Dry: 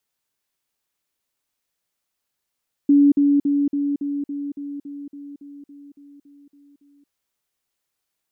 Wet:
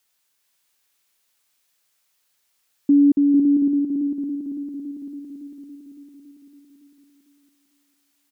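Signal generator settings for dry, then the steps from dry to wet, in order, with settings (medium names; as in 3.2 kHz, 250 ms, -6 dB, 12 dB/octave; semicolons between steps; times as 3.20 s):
level ladder 285 Hz -10 dBFS, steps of -3 dB, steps 15, 0.23 s 0.05 s
on a send: feedback delay 450 ms, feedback 31%, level -5 dB; on the sum: tape noise reduction on one side only encoder only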